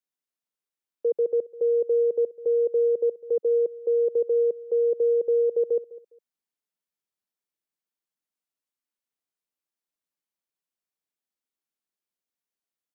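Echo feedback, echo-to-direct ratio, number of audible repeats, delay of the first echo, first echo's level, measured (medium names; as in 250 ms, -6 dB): 23%, -19.0 dB, 2, 204 ms, -19.0 dB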